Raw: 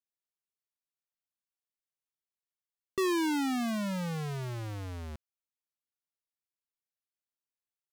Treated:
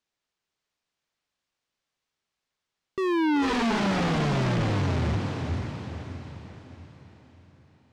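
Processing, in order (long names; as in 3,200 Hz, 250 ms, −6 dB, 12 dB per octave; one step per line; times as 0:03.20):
high-shelf EQ 4,000 Hz +5.5 dB
feedback delay with all-pass diffusion 489 ms, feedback 45%, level −5 dB
sine wavefolder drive 10 dB, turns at −21 dBFS
high-frequency loss of the air 130 metres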